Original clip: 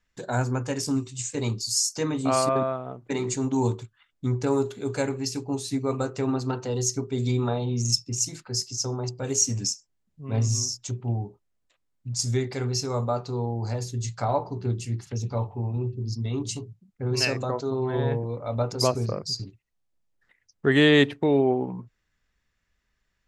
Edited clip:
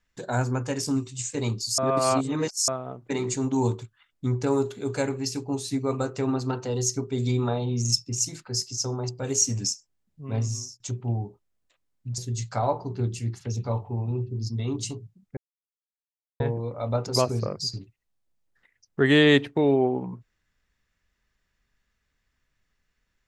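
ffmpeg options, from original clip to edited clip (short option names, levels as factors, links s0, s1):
-filter_complex "[0:a]asplit=7[s0][s1][s2][s3][s4][s5][s6];[s0]atrim=end=1.782[s7];[s1]atrim=start=1.778:end=2.682,asetpts=PTS-STARTPTS,areverse[s8];[s2]atrim=start=2.678:end=10.8,asetpts=PTS-STARTPTS,afade=t=out:st=7.562:d=0.56:silence=0.0749894[s9];[s3]atrim=start=10.8:end=12.182,asetpts=PTS-STARTPTS,afade=t=in:d=0.004:c=hsin:silence=0.0749894[s10];[s4]atrim=start=13.838:end=17.03,asetpts=PTS-STARTPTS,afade=t=out:st=3.188:d=0.004:c=hsin[s11];[s5]atrim=start=17.03:end=18.06,asetpts=PTS-STARTPTS,volume=0[s12];[s6]atrim=start=18.06,asetpts=PTS-STARTPTS,afade=t=in:d=0.004:c=hsin[s13];[s7][s8]acrossfade=d=0.004:c1=hsin:c2=hsin[s14];[s9][s10]concat=n=2:v=0:a=1[s15];[s14][s15]acrossfade=d=0.004:c1=hsin:c2=hsin[s16];[s11][s12][s13]concat=n=3:v=0:a=1[s17];[s16][s17]acrossfade=d=0.004:c1=hsin:c2=hsin"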